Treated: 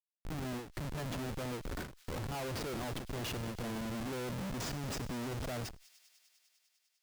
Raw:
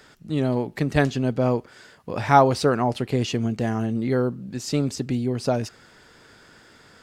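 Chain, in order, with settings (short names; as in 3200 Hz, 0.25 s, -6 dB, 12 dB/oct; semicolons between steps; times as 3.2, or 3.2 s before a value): gate with hold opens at -38 dBFS; reverse echo 50 ms -19 dB; reverse; compressor 12:1, threshold -33 dBFS, peak gain reduction 23.5 dB; reverse; Schmitt trigger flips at -43.5 dBFS; on a send: thin delay 0.1 s, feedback 84%, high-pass 3200 Hz, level -16 dB; on the sum: ending taper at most 120 dB/s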